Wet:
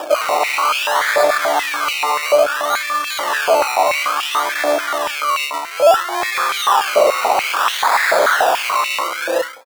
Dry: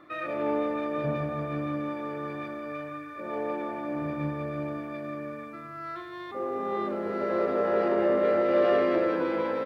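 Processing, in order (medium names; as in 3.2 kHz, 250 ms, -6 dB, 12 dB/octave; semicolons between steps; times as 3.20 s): fade out at the end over 1.80 s; phaser 0.32 Hz, delay 3.2 ms, feedback 59%; decimation with a swept rate 21×, swing 60% 0.59 Hz; sine folder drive 16 dB, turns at -13 dBFS; step-sequenced high-pass 6.9 Hz 610–2600 Hz; trim -1.5 dB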